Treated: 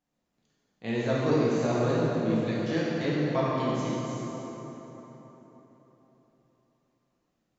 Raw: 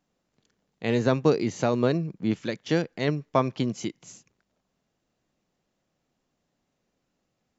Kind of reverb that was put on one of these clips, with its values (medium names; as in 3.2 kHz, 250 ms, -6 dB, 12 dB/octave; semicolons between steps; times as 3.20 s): plate-style reverb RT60 4.1 s, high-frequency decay 0.6×, DRR -8 dB; trim -10 dB